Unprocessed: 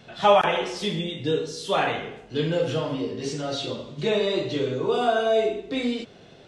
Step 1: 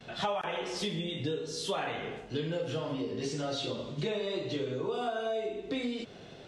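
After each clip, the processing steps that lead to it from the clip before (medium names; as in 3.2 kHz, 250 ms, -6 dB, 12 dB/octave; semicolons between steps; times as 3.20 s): compression 6:1, threshold -31 dBFS, peak gain reduction 17 dB; gate with hold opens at -42 dBFS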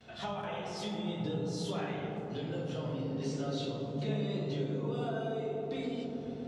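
feedback echo behind a low-pass 137 ms, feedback 84%, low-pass 840 Hz, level -4.5 dB; on a send at -3 dB: reverberation RT60 1.2 s, pre-delay 3 ms; on the sum: trim -8 dB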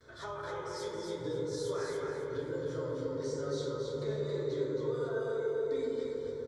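static phaser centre 740 Hz, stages 6; feedback delay 272 ms, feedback 30%, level -4 dB; trim +2 dB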